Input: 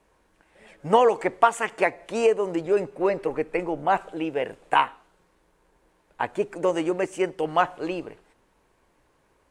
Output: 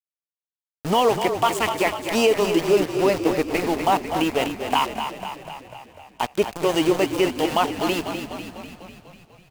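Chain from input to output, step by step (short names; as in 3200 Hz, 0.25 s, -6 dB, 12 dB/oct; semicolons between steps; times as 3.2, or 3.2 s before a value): thirty-one-band EQ 250 Hz +4 dB, 500 Hz -6 dB, 1600 Hz -11 dB, 3150 Hz +10 dB, 5000 Hz +10 dB; limiter -15 dBFS, peak gain reduction 10 dB; sample gate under -31.5 dBFS; frequency-shifting echo 0.248 s, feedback 61%, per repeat -33 Hz, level -8 dB; warbling echo 0.23 s, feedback 55%, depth 52 cents, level -18.5 dB; gain +6 dB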